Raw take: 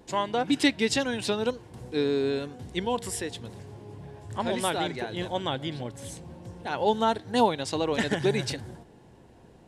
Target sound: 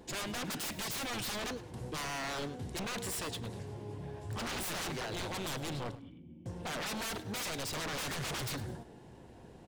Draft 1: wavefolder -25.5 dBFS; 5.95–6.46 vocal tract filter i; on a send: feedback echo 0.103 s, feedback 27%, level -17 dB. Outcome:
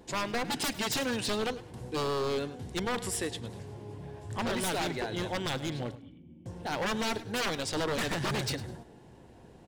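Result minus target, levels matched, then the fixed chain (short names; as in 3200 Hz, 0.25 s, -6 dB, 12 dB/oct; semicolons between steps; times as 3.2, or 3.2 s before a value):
wavefolder: distortion -11 dB
wavefolder -33 dBFS; 5.95–6.46 vocal tract filter i; on a send: feedback echo 0.103 s, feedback 27%, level -17 dB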